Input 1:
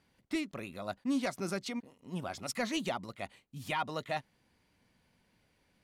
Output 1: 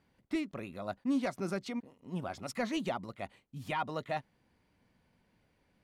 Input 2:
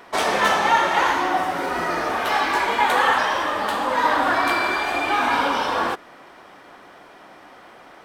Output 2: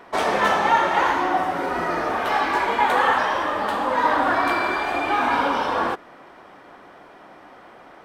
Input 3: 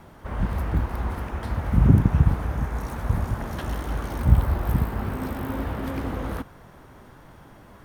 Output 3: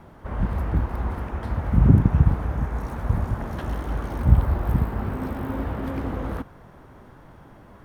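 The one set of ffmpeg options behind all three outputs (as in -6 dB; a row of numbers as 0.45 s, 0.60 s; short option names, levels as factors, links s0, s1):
-af "highshelf=f=2500:g=-8.5,volume=1.12"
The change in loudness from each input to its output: 0.0 LU, -0.5 LU, +1.0 LU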